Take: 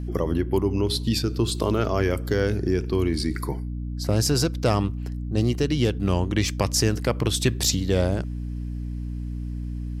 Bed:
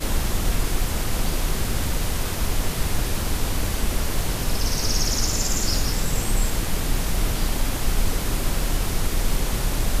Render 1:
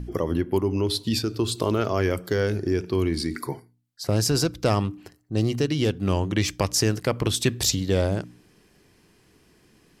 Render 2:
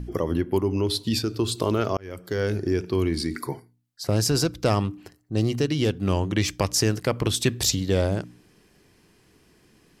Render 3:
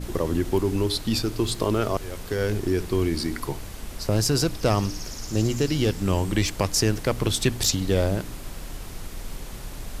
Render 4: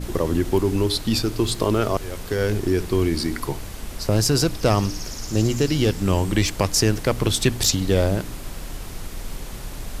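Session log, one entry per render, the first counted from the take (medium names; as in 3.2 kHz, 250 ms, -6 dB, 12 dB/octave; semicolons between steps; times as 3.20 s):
de-hum 60 Hz, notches 5
1.97–2.52 s: fade in
add bed -13 dB
trim +3 dB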